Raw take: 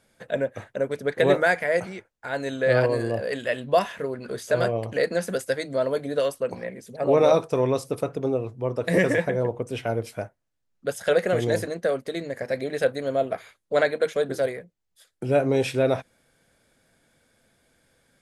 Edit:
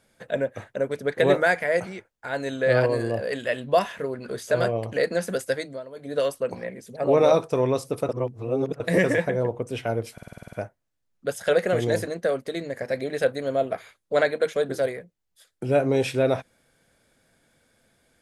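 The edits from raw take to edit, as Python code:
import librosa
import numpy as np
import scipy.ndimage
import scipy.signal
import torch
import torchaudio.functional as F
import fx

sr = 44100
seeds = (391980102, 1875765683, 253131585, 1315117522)

y = fx.edit(x, sr, fx.fade_down_up(start_s=5.57, length_s=0.63, db=-15.5, fade_s=0.25),
    fx.reverse_span(start_s=8.09, length_s=0.71),
    fx.stutter(start_s=10.13, slice_s=0.05, count=9), tone=tone)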